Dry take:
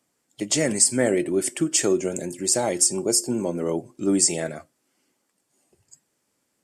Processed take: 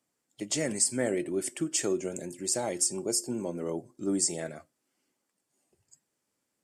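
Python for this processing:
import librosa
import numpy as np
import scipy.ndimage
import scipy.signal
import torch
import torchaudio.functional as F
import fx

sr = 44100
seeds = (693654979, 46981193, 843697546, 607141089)

y = fx.peak_eq(x, sr, hz=2600.0, db=-8.5, octaves=0.52, at=(3.7, 4.39))
y = F.gain(torch.from_numpy(y), -8.0).numpy()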